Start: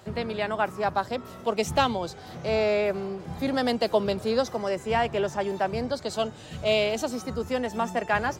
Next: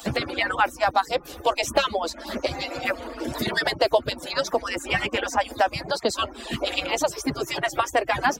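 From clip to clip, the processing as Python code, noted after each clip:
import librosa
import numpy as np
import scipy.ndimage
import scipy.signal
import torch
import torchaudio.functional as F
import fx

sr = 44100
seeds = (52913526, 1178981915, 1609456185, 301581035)

y = fx.hpss_only(x, sr, part='percussive')
y = fx.band_squash(y, sr, depth_pct=70)
y = y * librosa.db_to_amplitude(8.0)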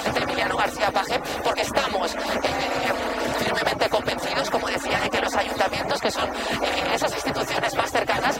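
y = fx.bin_compress(x, sr, power=0.4)
y = y + 10.0 ** (-23.5 / 20.0) * np.pad(y, (int(509 * sr / 1000.0), 0))[:len(y)]
y = y * librosa.db_to_amplitude(-6.0)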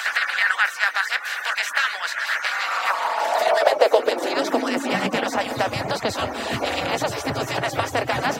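y = fx.filter_sweep_highpass(x, sr, from_hz=1600.0, to_hz=100.0, start_s=2.41, end_s=5.83, q=3.8)
y = y * librosa.db_to_amplitude(-1.0)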